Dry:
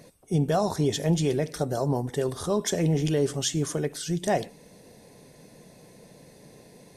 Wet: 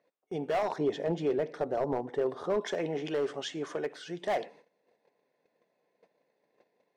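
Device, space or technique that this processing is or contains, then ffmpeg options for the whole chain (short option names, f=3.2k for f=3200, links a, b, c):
walkie-talkie: -filter_complex "[0:a]highpass=470,lowpass=2.4k,asoftclip=type=hard:threshold=-25dB,agate=range=-19dB:threshold=-53dB:ratio=16:detection=peak,asettb=1/sr,asplit=3[a][b][c];[a]atrim=end=0.784[d];[b]atrim=start=0.78:end=2.61,asetpts=PTS-STARTPTS,afade=t=in:d=0.004:c=qsin,afade=t=out:st=1.826:d=0.004:c=qsin,tiltshelf=f=780:g=5.5[e];[c]atrim=start=2.606[f];[d][e]acrossfade=d=0.004:c1=hsin:c2=qsin[g];[g][f]acrossfade=d=0.004:c1=qsin:c2=hsin"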